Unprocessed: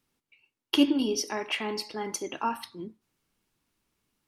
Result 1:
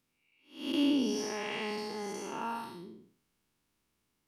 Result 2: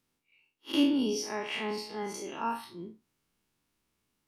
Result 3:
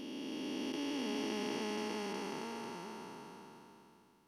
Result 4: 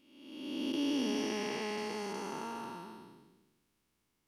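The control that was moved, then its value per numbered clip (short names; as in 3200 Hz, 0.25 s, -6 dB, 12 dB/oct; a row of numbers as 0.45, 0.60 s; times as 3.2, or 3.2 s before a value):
time blur, width: 261, 98, 1720, 674 ms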